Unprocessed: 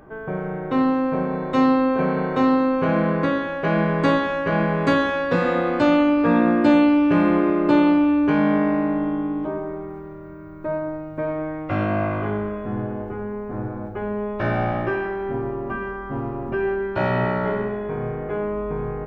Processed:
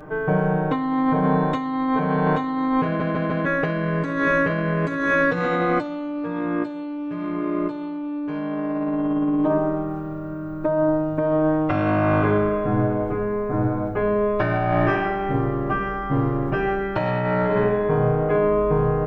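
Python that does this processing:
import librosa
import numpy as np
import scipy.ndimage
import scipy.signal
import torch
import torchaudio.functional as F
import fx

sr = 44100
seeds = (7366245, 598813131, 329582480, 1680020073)

y = fx.edit(x, sr, fx.stutter_over(start_s=2.85, slice_s=0.15, count=4), tone=tone)
y = y + 0.92 * np.pad(y, (int(6.6 * sr / 1000.0), 0))[:len(y)]
y = fx.over_compress(y, sr, threshold_db=-22.0, ratio=-1.0)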